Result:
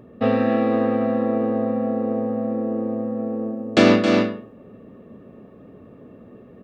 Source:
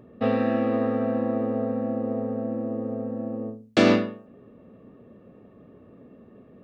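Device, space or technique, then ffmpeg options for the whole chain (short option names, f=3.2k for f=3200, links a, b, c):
ducked delay: -filter_complex "[0:a]asplit=3[a][b][c];[b]adelay=269,volume=-3.5dB[d];[c]apad=whole_len=304628[e];[d][e]sidechaincompress=threshold=-28dB:ratio=8:attack=33:release=133[f];[a][f]amix=inputs=2:normalize=0,volume=4dB"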